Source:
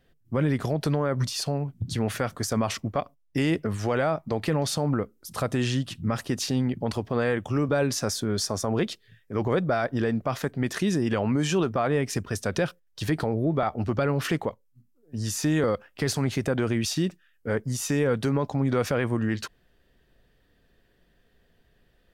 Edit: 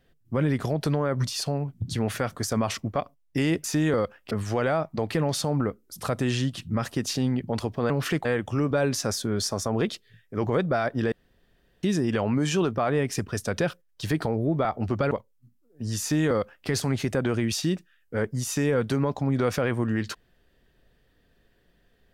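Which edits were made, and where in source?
10.1–10.81 room tone
14.09–14.44 move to 7.23
15.34–16.01 copy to 3.64

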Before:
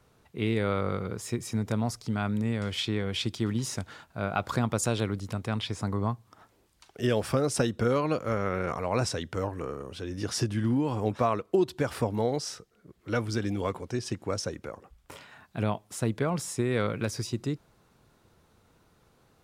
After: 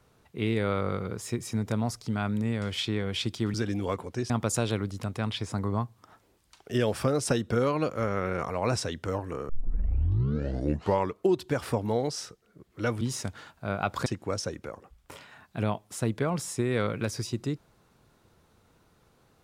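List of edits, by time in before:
3.54–4.59 swap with 13.3–14.06
9.78 tape start 1.74 s

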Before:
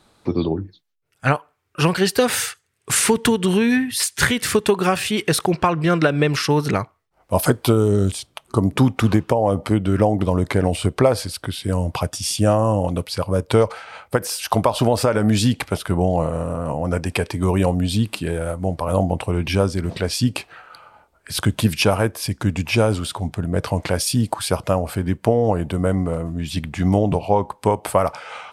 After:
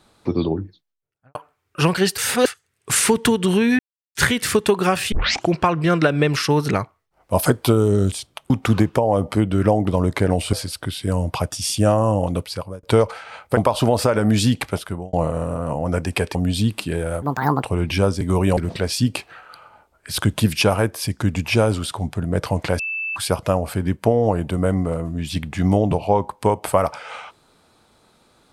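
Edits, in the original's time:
0.56–1.35 studio fade out
2.18–2.46 reverse
3.79–4.15 mute
5.12 tape start 0.39 s
8.5–8.84 cut
10.87–11.14 cut
13.01–13.44 fade out
14.18–14.56 cut
15.68–16.12 fade out linear
17.34–17.7 move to 19.78
18.57–19.2 speed 153%
24–24.37 bleep 2640 Hz -23 dBFS

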